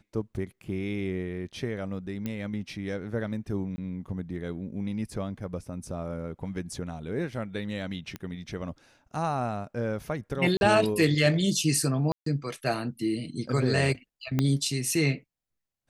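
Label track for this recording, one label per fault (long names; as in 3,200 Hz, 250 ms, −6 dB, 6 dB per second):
2.260000	2.260000	click −19 dBFS
3.760000	3.780000	drop-out 20 ms
8.160000	8.160000	click −21 dBFS
10.570000	10.610000	drop-out 41 ms
12.120000	12.260000	drop-out 143 ms
14.390000	14.390000	click −12 dBFS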